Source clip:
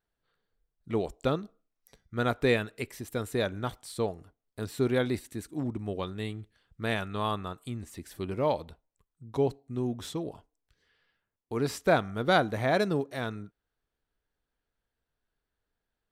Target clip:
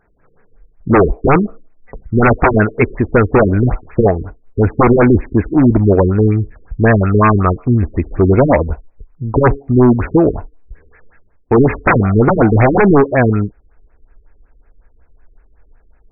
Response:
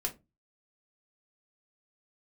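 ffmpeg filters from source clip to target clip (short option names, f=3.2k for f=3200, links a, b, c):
-af "asubboost=boost=5.5:cutoff=57,aeval=exprs='0.299*sin(PI/2*7.08*val(0)/0.299)':c=same,afftfilt=real='re*lt(b*sr/1024,440*pow(2700/440,0.5+0.5*sin(2*PI*5.4*pts/sr)))':imag='im*lt(b*sr/1024,440*pow(2700/440,0.5+0.5*sin(2*PI*5.4*pts/sr)))':win_size=1024:overlap=0.75,volume=6.5dB"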